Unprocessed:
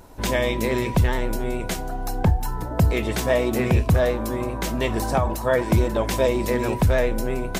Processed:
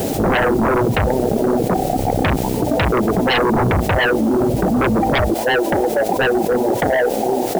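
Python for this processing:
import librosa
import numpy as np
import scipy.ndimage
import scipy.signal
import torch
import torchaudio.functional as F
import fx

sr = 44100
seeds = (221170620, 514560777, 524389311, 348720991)

y = fx.halfwave_hold(x, sr)
y = fx.highpass(y, sr, hz=fx.steps((0.0, 180.0), (5.34, 540.0)), slope=12)
y = fx.dereverb_blind(y, sr, rt60_s=1.8)
y = scipy.signal.sosfilt(scipy.signal.butter(12, 820.0, 'lowpass', fs=sr, output='sos'), y)
y = fx.low_shelf(y, sr, hz=340.0, db=3.0)
y = fx.fold_sine(y, sr, drive_db=16, ceiling_db=-5.5)
y = fx.quant_dither(y, sr, seeds[0], bits=6, dither='triangular')
y = fx.env_flatten(y, sr, amount_pct=70)
y = y * 10.0 ** (-7.5 / 20.0)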